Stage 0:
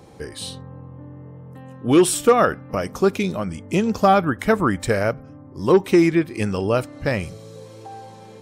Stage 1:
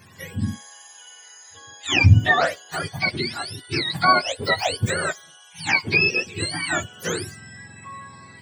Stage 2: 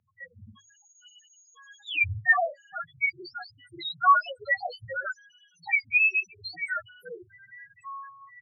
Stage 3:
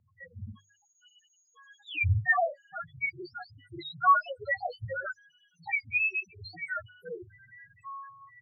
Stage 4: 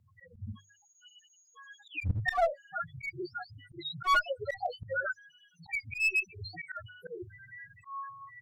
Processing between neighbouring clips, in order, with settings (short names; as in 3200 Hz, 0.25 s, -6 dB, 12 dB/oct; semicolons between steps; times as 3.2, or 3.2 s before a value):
spectrum mirrored in octaves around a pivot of 930 Hz
loudest bins only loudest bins 2; three-band isolator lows -21 dB, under 530 Hz, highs -12 dB, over 3800 Hz; notches 50/100/150 Hz; gain +1.5 dB
tilt -3 dB/oct; gain -2 dB
harmonic-percussive split harmonic +4 dB; one-sided clip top -24 dBFS, bottom -13.5 dBFS; auto swell 0.144 s